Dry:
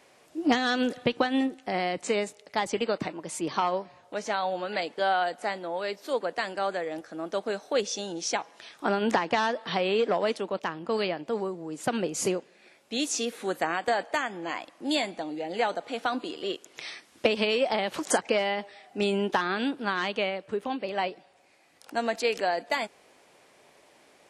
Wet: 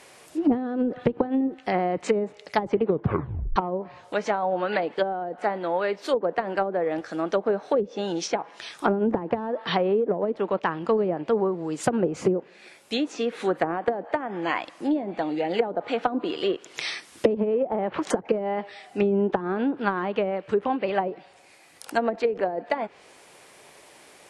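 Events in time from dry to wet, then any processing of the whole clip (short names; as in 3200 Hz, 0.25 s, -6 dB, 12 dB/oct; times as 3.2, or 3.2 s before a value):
2.81 tape stop 0.75 s
17.4–18.02 LPF 2700 Hz
whole clip: vocal rider within 3 dB 2 s; treble ducked by the level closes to 390 Hz, closed at -22 dBFS; fifteen-band EQ 250 Hz -4 dB, 630 Hz -3 dB, 10000 Hz +6 dB; gain +8 dB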